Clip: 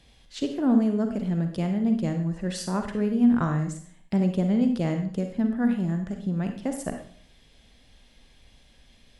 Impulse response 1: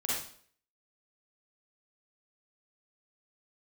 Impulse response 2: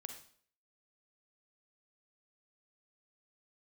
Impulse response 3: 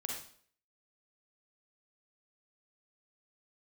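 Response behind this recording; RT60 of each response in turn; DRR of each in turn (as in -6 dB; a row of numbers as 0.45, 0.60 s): 2; 0.55, 0.55, 0.55 s; -7.0, 5.0, -1.0 dB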